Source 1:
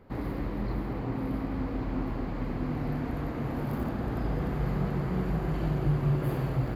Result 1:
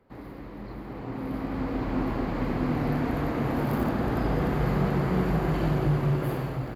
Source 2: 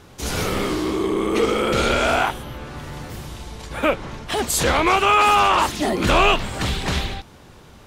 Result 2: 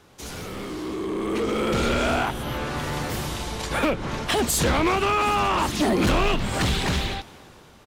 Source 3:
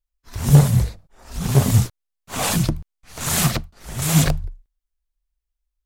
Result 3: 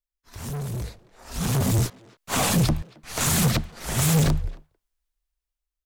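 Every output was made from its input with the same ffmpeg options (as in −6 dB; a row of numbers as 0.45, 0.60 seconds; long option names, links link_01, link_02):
-filter_complex "[0:a]lowshelf=frequency=150:gain=-7,acrossover=split=290[link_01][link_02];[link_02]acompressor=threshold=-29dB:ratio=5[link_03];[link_01][link_03]amix=inputs=2:normalize=0,volume=24dB,asoftclip=hard,volume=-24dB,asplit=2[link_04][link_05];[link_05]adelay=270,highpass=300,lowpass=3400,asoftclip=type=hard:threshold=-33.5dB,volume=-19dB[link_06];[link_04][link_06]amix=inputs=2:normalize=0,dynaudnorm=framelen=410:gausssize=7:maxgain=13.5dB,volume=-6dB"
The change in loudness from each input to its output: +4.0, −4.5, −4.5 LU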